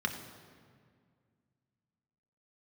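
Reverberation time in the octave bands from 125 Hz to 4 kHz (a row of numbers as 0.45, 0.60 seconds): 2.8, 2.7, 2.1, 1.9, 1.7, 1.3 seconds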